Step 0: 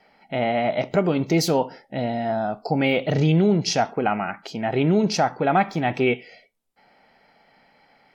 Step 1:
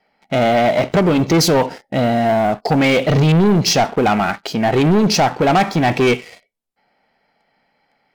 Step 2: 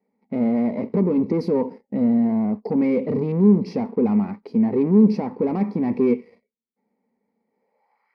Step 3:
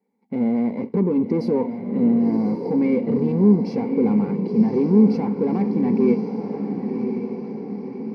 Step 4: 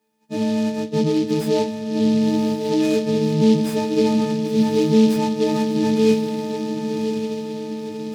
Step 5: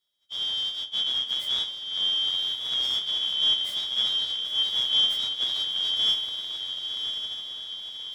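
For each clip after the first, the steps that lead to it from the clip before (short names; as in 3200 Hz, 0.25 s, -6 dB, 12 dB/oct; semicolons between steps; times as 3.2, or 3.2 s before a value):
sample leveller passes 3
ripple EQ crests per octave 0.89, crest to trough 12 dB; band-pass sweep 270 Hz -> 1400 Hz, 7.46–8.1
notch comb 630 Hz; on a send: diffused feedback echo 1.077 s, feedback 54%, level -6.5 dB
frequency quantiser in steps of 6 st; on a send at -12.5 dB: reverb RT60 0.80 s, pre-delay 7 ms; on the sum: noise-modulated delay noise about 3700 Hz, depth 0.046 ms
four-band scrambler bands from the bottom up 3412; gain -8.5 dB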